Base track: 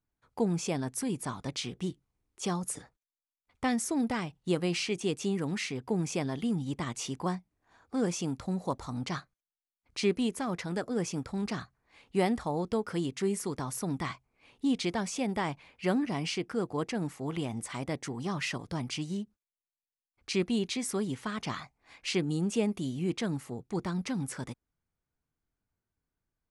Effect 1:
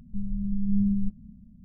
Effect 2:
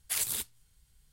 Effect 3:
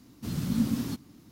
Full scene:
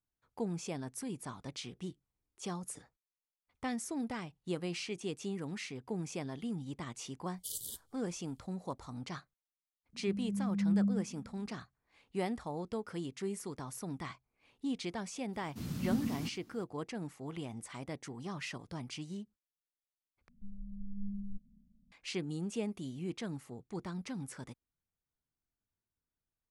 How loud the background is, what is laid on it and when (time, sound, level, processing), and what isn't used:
base track −8 dB
0:07.34: mix in 2 −10 dB + linear-phase brick-wall band-stop 590–2,900 Hz
0:09.93: mix in 1 −4.5 dB + high-pass with resonance 250 Hz, resonance Q 1.5
0:15.33: mix in 3 −7.5 dB
0:20.28: overwrite with 1 −12.5 dB + parametric band 98 Hz −10 dB 2 octaves

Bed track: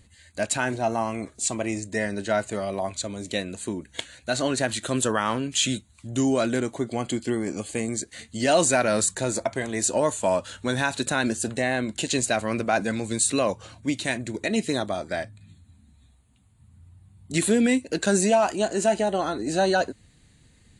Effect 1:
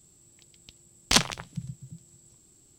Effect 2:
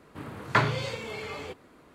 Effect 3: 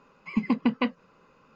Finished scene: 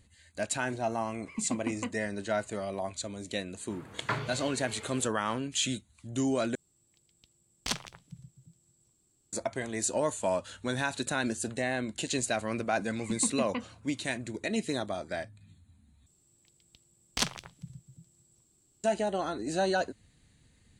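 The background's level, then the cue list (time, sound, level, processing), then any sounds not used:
bed track −6.5 dB
0:01.01: mix in 3 −10.5 dB
0:03.54: mix in 2 −9 dB
0:06.55: overwrite with 1 −12 dB
0:12.73: mix in 3 −9.5 dB
0:16.06: overwrite with 1 −9 dB

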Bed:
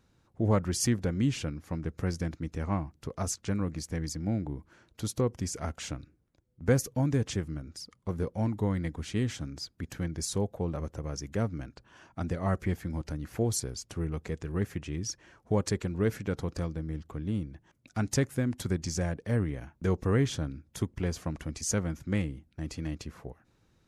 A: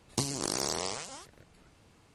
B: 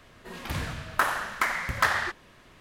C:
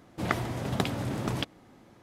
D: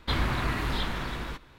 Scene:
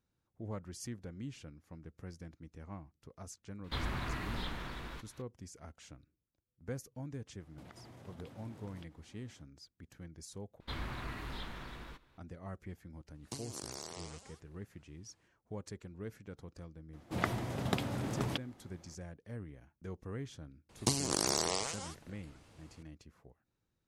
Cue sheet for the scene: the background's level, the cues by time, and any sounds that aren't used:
bed −16.5 dB
0:03.64: mix in D −10 dB + one half of a high-frequency compander encoder only
0:07.40: mix in C −11 dB + downward compressor 8 to 1, threshold −40 dBFS
0:10.60: overwrite with D −13.5 dB
0:13.14: mix in A −13.5 dB + high-pass filter 43 Hz
0:16.93: mix in C −5 dB
0:20.69: mix in A
not used: B

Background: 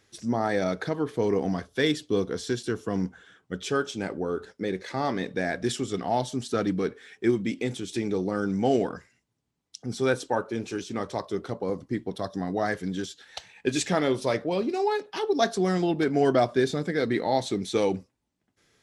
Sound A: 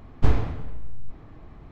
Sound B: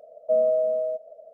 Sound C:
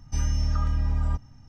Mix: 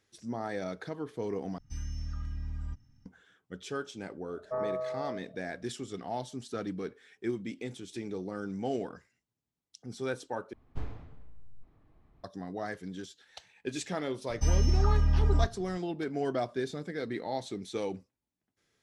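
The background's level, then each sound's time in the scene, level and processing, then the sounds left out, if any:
background −10 dB
0:01.58: overwrite with C −12.5 dB + flat-topped bell 720 Hz −9.5 dB
0:04.22: mix in B −12 dB + highs frequency-modulated by the lows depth 0.3 ms
0:10.53: overwrite with A −18 dB
0:14.29: mix in C

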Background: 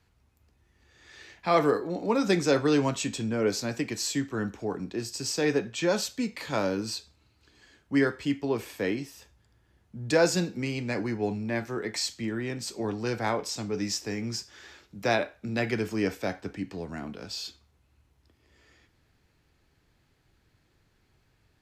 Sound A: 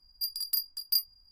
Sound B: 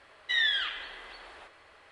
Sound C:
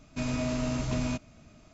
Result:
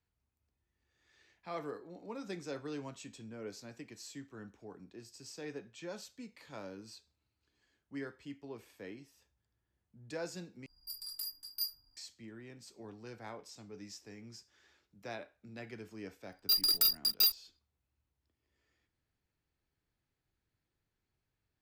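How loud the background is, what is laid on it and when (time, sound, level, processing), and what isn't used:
background −18.5 dB
0:10.66: overwrite with A −12 dB + feedback delay network reverb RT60 0.38 s, high-frequency decay 0.55×, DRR −7.5 dB
0:16.28: mix in A −8.5 dB + leveller curve on the samples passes 5
not used: B, C

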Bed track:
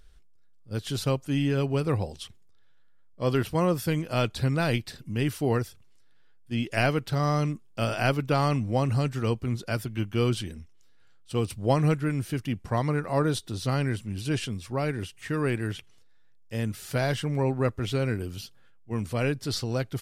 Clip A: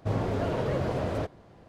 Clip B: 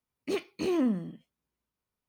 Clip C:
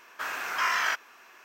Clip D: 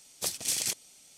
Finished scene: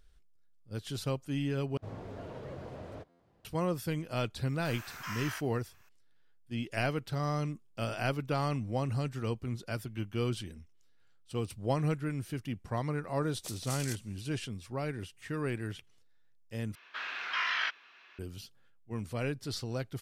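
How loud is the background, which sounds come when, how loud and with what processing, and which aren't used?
bed track −7.5 dB
0:01.77: overwrite with A −15 dB + buffer that repeats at 0:01.32
0:04.45: mix in C −15.5 dB + high-shelf EQ 5,600 Hz +11.5 dB
0:13.22: mix in D −11.5 dB
0:16.75: overwrite with C −11 dB + drawn EQ curve 840 Hz 0 dB, 3,800 Hz +13 dB, 9,000 Hz −19 dB
not used: B

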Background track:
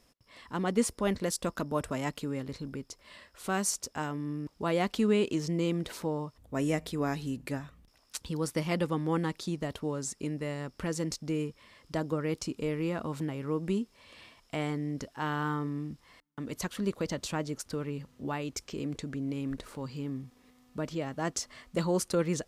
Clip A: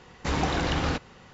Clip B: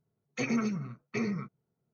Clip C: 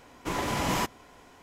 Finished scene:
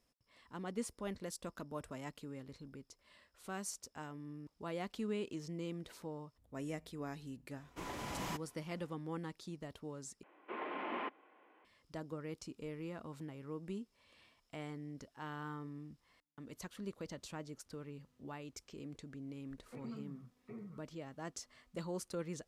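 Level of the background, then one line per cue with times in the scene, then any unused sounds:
background track −13 dB
0:07.51: mix in C −14 dB
0:10.23: overwrite with C −11.5 dB + single-sideband voice off tune +53 Hz 200–2,800 Hz
0:19.34: mix in B −17 dB + low-pass filter 1,100 Hz
not used: A

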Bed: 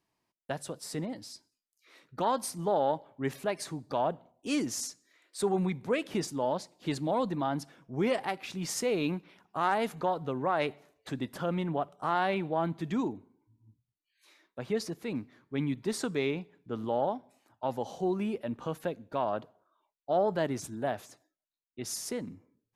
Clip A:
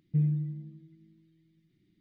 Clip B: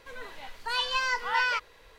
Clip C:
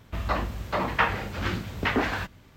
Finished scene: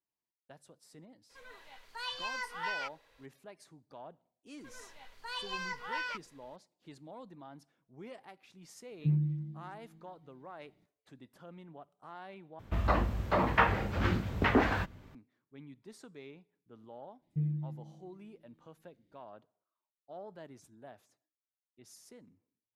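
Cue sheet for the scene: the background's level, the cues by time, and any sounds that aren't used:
bed −19.5 dB
0:01.29: mix in B −10 dB, fades 0.02 s + low-shelf EQ 380 Hz −5 dB
0:04.58: mix in B −11 dB
0:08.86: mix in A −2.5 dB + all-pass dispersion lows, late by 65 ms, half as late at 300 Hz
0:12.59: overwrite with C + high-shelf EQ 2,100 Hz −9 dB
0:17.22: mix in A −6.5 dB

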